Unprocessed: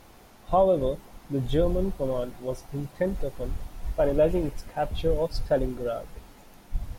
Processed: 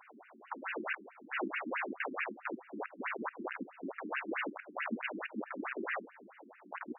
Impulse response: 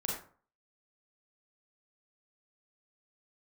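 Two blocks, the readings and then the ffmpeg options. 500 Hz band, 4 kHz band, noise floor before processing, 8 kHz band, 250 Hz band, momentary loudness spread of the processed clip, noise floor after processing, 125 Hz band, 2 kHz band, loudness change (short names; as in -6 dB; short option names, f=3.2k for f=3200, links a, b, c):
-19.0 dB, -9.0 dB, -52 dBFS, n/a, -11.0 dB, 11 LU, -60 dBFS, under -25 dB, +8.0 dB, -12.0 dB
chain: -af "aeval=exprs='(mod(28.2*val(0)+1,2)-1)/28.2':c=same,afftfilt=real='re*between(b*sr/1024,250*pow(2100/250,0.5+0.5*sin(2*PI*4.6*pts/sr))/1.41,250*pow(2100/250,0.5+0.5*sin(2*PI*4.6*pts/sr))*1.41)':imag='im*between(b*sr/1024,250*pow(2100/250,0.5+0.5*sin(2*PI*4.6*pts/sr))/1.41,250*pow(2100/250,0.5+0.5*sin(2*PI*4.6*pts/sr))*1.41)':win_size=1024:overlap=0.75,volume=4.5dB"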